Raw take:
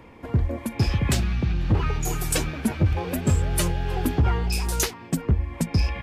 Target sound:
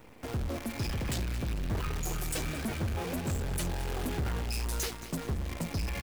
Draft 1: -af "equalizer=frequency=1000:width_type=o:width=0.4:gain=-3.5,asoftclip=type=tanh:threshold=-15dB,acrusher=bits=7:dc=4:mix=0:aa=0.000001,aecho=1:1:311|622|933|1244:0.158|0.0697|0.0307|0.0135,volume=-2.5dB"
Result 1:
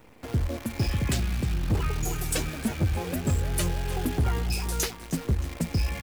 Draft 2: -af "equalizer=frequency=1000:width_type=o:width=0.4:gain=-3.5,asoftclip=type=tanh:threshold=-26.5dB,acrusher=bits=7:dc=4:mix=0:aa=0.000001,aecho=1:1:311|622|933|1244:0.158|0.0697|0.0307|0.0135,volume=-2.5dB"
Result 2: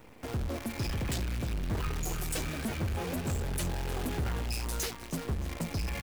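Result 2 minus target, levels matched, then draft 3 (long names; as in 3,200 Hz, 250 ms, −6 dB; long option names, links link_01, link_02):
echo 89 ms late
-af "equalizer=frequency=1000:width_type=o:width=0.4:gain=-3.5,asoftclip=type=tanh:threshold=-26.5dB,acrusher=bits=7:dc=4:mix=0:aa=0.000001,aecho=1:1:222|444|666|888:0.158|0.0697|0.0307|0.0135,volume=-2.5dB"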